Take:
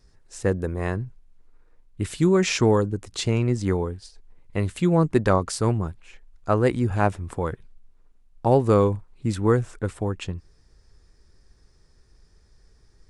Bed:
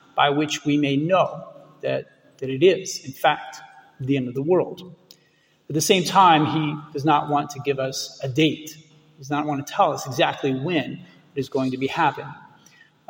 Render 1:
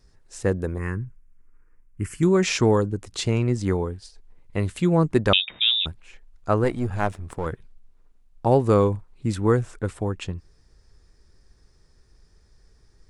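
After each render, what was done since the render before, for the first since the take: 0.78–2.23 fixed phaser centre 1600 Hz, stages 4; 5.33–5.86 inverted band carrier 3700 Hz; 6.64–7.46 half-wave gain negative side -7 dB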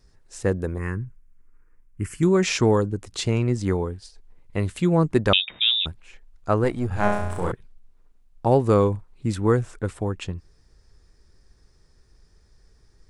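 6.88–7.52 flutter echo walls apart 5.8 m, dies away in 0.85 s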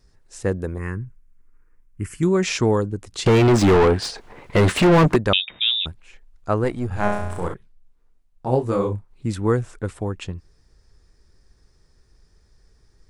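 3.26–5.16 overdrive pedal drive 38 dB, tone 1500 Hz, clips at -6.5 dBFS; 7.48–9.11 detuned doubles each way 59 cents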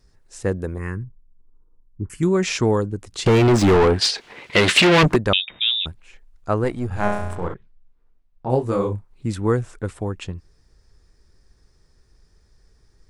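1.03–2.1 steep low-pass 1000 Hz; 4.01–5.03 weighting filter D; 7.35–8.5 air absorption 150 m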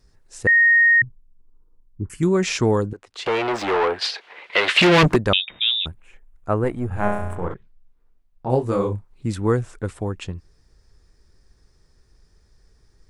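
0.47–1.02 bleep 1860 Hz -11 dBFS; 2.93–4.81 three-band isolator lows -23 dB, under 440 Hz, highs -14 dB, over 4200 Hz; 5.88–7.51 bell 4800 Hz -12.5 dB 1.1 oct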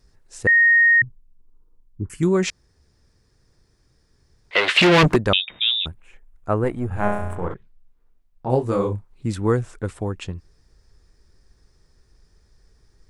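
2.5–4.51 room tone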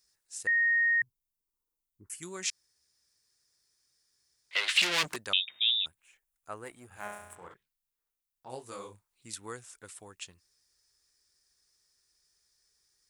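HPF 68 Hz 6 dB/oct; pre-emphasis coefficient 0.97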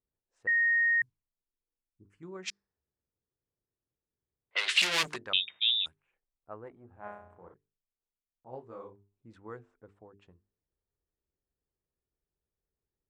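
low-pass opened by the level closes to 490 Hz, open at -24.5 dBFS; notches 50/100/150/200/250/300/350/400/450 Hz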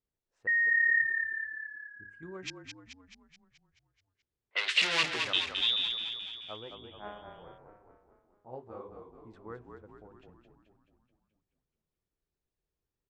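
air absorption 67 m; frequency-shifting echo 0.215 s, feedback 58%, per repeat -35 Hz, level -6 dB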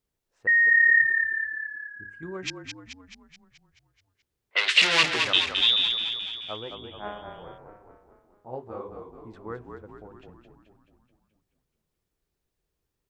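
gain +7.5 dB

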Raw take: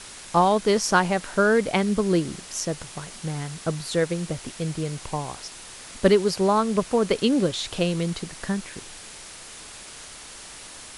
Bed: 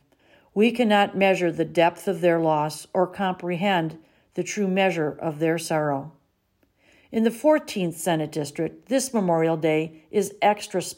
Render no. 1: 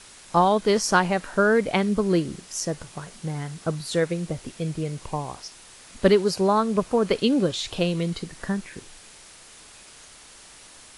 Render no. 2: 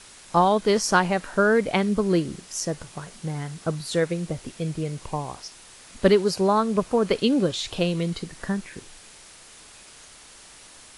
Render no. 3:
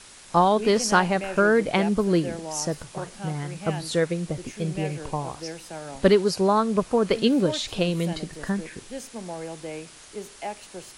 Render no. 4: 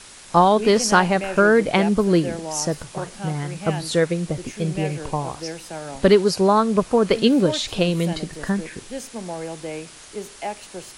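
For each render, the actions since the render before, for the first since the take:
noise print and reduce 6 dB
nothing audible
add bed -14 dB
gain +4 dB; limiter -3 dBFS, peak gain reduction 3 dB

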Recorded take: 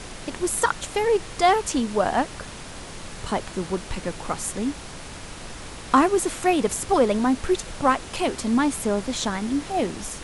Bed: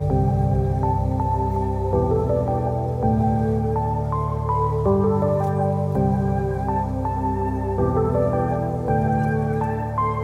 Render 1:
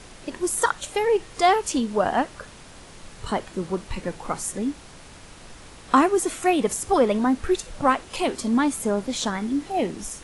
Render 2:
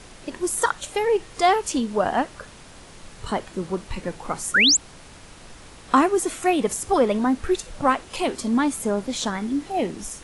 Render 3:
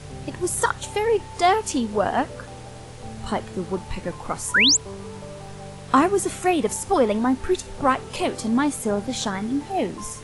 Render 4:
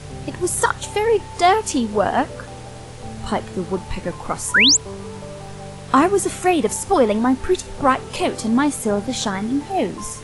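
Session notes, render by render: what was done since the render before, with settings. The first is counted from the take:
noise print and reduce 7 dB
4.54–4.77 painted sound rise 1300–8100 Hz -16 dBFS
add bed -18 dB
gain +3.5 dB; limiter -3 dBFS, peak gain reduction 2 dB

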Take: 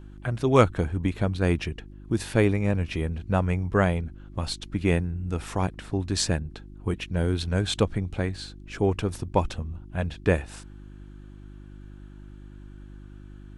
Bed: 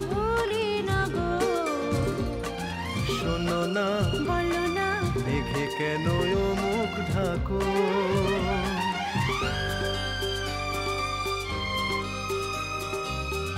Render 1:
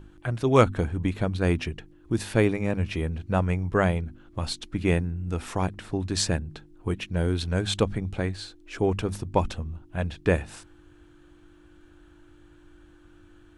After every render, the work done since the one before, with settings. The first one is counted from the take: de-hum 50 Hz, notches 5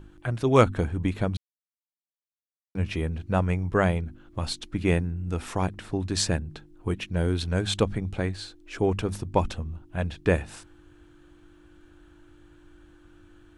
1.37–2.75 mute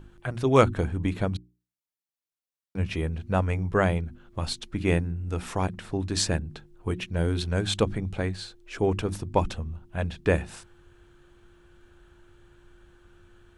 notches 60/120/180/240/300/360 Hz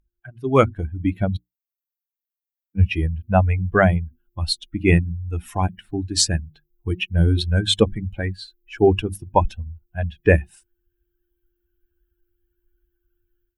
per-bin expansion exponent 2; AGC gain up to 15 dB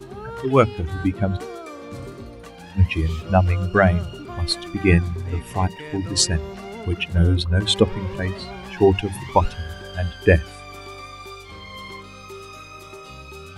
add bed -8.5 dB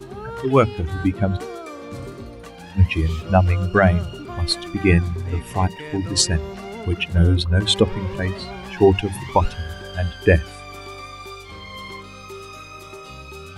gain +1.5 dB; limiter -3 dBFS, peak gain reduction 3 dB

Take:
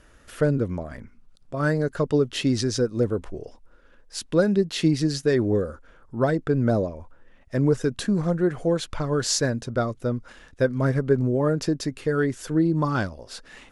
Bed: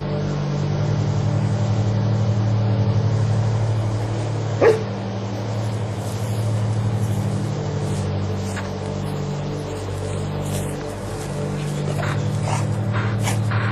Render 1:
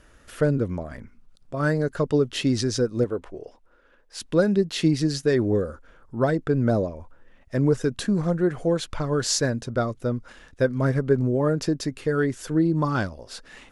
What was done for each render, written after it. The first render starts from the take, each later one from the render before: 3.04–4.2 tone controls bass -9 dB, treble -6 dB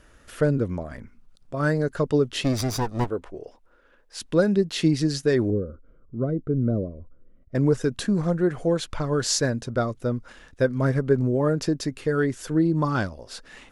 2.44–3.09 minimum comb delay 0.83 ms; 5.5–7.55 running mean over 51 samples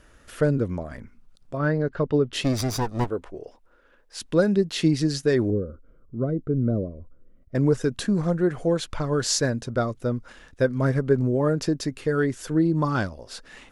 1.57–2.33 air absorption 230 m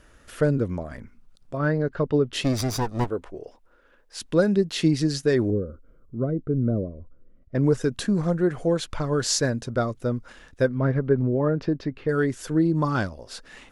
6.26–7.64 air absorption 120 m; 10.68–12.09 air absorption 290 m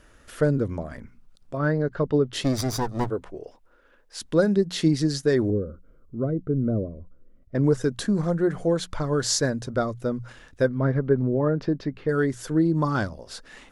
notches 60/120/180 Hz; dynamic EQ 2600 Hz, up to -6 dB, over -53 dBFS, Q 3.6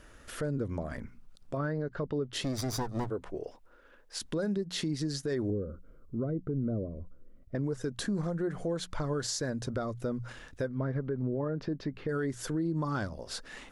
compressor 3:1, threshold -30 dBFS, peak gain reduction 11.5 dB; limiter -24 dBFS, peak gain reduction 5.5 dB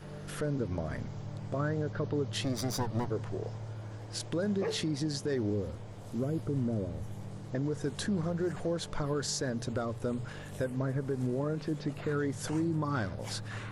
add bed -21 dB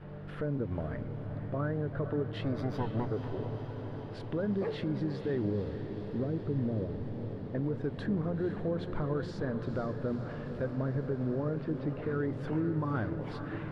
air absorption 430 m; diffused feedback echo 0.49 s, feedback 74%, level -9.5 dB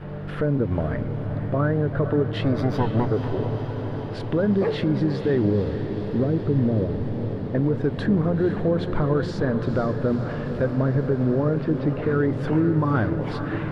gain +11 dB

